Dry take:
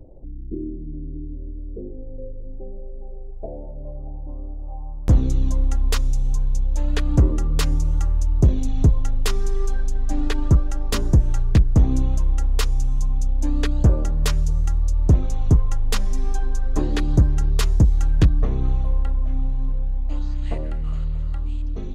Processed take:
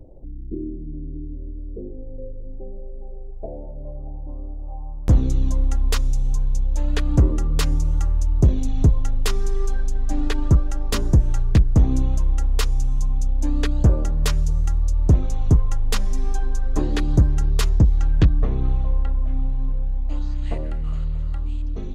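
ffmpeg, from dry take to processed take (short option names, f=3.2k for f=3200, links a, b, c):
-filter_complex "[0:a]asettb=1/sr,asplit=3[a][b][c];[a]atrim=end=17.694[d];[b]atrim=start=17.69:end=19.88,asetpts=PTS-STARTPTS,afade=t=in:d=0.004:c=qsin,afade=t=out:st=2.186:d=0.004:c=qsin,lowpass=4.9k[e];[c]atrim=start=19.876[f];[d][e]acrossfade=d=0.004:c1=hsin:c2=qsin[g];[g][f]acrossfade=d=0.004:c1=qsin:c2=hsin"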